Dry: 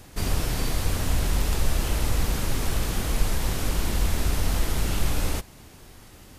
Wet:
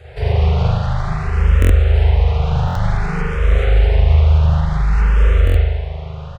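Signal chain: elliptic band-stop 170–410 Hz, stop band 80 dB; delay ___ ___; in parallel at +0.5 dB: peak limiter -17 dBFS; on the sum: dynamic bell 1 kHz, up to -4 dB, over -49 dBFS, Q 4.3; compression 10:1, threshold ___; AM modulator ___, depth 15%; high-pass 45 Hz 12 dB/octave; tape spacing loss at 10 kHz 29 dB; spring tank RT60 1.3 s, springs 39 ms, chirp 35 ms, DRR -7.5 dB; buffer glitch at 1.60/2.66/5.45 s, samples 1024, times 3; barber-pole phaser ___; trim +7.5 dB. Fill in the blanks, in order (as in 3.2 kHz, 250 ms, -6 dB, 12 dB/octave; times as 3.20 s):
169 ms, -3 dB, -19 dBFS, 76 Hz, +0.54 Hz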